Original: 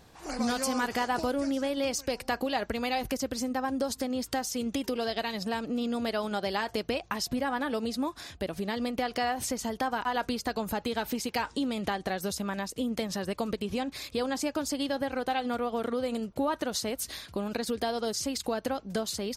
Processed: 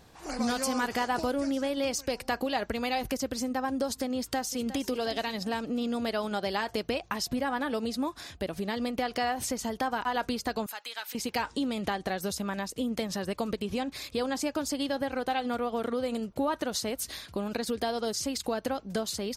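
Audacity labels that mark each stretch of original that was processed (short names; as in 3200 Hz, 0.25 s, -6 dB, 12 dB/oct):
4.160000	4.870000	echo throw 0.36 s, feedback 40%, level -13.5 dB
10.660000	11.150000	HPF 1400 Hz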